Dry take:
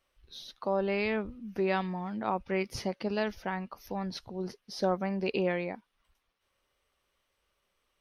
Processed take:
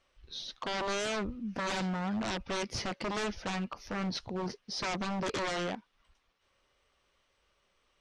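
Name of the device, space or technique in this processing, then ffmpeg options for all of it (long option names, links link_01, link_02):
synthesiser wavefolder: -af "aeval=exprs='0.0224*(abs(mod(val(0)/0.0224+3,4)-2)-1)':channel_layout=same,lowpass=frequency=7800:width=0.5412,lowpass=frequency=7800:width=1.3066,volume=4.5dB"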